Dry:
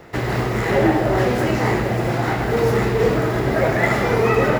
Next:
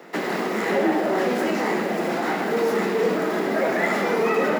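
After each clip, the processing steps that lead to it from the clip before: steep high-pass 170 Hz 72 dB/octave; in parallel at +2 dB: peak limiter -16.5 dBFS, peak gain reduction 10.5 dB; on the sum: trim -7.5 dB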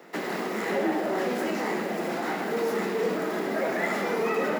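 treble shelf 7.3 kHz +4 dB; trim -5.5 dB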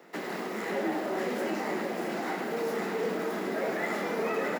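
delay 625 ms -6 dB; trim -4.5 dB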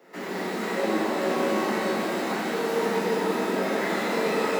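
pitch-shifted reverb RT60 2 s, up +12 st, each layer -8 dB, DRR -7.5 dB; trim -4 dB

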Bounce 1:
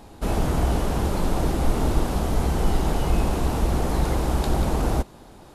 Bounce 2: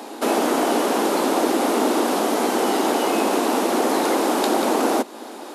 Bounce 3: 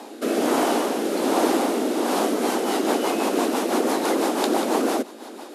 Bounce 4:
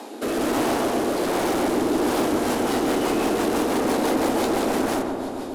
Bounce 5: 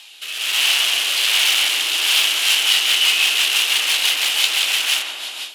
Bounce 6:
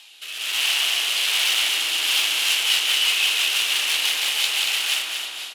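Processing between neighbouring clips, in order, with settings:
steep high-pass 240 Hz 48 dB/octave; in parallel at +3 dB: compression, threshold -36 dBFS, peak gain reduction 12 dB; on the sum: trim +5.5 dB
rotary cabinet horn 1.2 Hz, later 6 Hz, at 1.95 s
overload inside the chain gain 24 dB; filtered feedback delay 135 ms, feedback 84%, low-pass 1.4 kHz, level -4.5 dB; trim +1.5 dB
resonant high-pass 2.9 kHz, resonance Q 4.5; level rider gain up to 13.5 dB
feedback delay 232 ms, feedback 35%, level -6 dB; trim -5 dB

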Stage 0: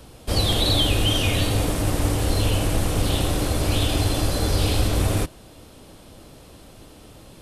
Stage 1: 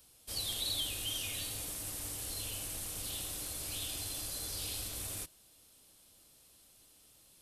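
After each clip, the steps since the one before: pre-emphasis filter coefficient 0.9; trim -7.5 dB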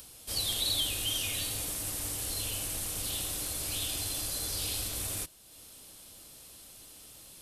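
upward compressor, threshold -49 dBFS; trim +5.5 dB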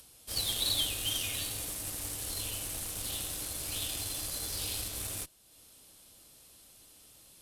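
Chebyshev shaper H 3 -18 dB, 5 -13 dB, 7 -15 dB, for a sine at -17.5 dBFS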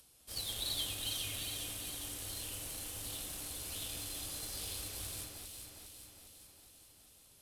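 echo whose repeats swap between lows and highs 204 ms, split 2.5 kHz, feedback 76%, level -3 dB; trim -7.5 dB

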